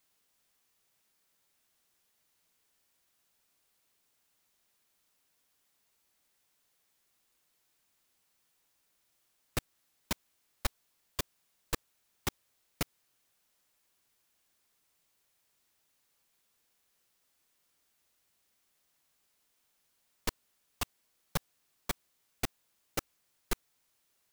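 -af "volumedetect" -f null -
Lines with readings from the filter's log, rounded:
mean_volume: -47.0 dB
max_volume: -15.6 dB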